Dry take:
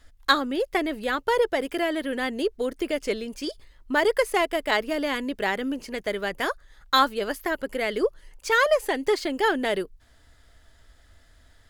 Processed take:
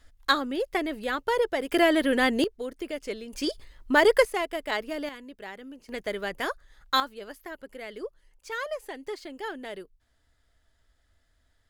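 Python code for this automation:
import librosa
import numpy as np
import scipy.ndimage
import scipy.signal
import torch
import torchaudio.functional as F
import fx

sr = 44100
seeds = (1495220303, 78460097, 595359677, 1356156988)

y = fx.gain(x, sr, db=fx.steps((0.0, -3.0), (1.72, 5.0), (2.44, -7.0), (3.33, 2.5), (4.25, -6.0), (5.09, -15.0), (5.89, -3.5), (7.0, -13.0)))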